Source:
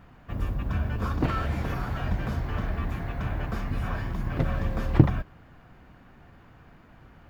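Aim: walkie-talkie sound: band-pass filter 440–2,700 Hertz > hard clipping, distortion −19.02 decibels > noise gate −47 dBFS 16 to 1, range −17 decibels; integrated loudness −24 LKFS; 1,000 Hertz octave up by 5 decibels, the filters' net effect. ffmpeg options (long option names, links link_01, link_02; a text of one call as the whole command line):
ffmpeg -i in.wav -af "highpass=440,lowpass=2700,equalizer=frequency=1000:width_type=o:gain=7,asoftclip=type=hard:threshold=-19.5dB,agate=range=-17dB:threshold=-47dB:ratio=16,volume=10.5dB" out.wav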